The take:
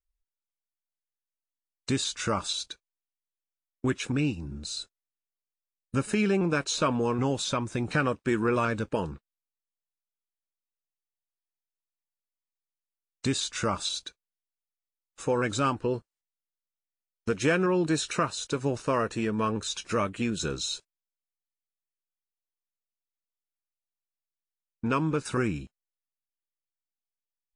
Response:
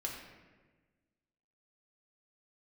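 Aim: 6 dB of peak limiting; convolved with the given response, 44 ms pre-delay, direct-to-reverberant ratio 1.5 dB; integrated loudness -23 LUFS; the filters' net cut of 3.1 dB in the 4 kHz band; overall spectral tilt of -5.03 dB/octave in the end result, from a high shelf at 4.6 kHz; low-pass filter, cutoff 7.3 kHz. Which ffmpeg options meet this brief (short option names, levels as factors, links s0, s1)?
-filter_complex "[0:a]lowpass=7300,equalizer=f=4000:t=o:g=-5,highshelf=f=4600:g=4,alimiter=limit=0.119:level=0:latency=1,asplit=2[s0][s1];[1:a]atrim=start_sample=2205,adelay=44[s2];[s1][s2]afir=irnorm=-1:irlink=0,volume=0.75[s3];[s0][s3]amix=inputs=2:normalize=0,volume=1.78"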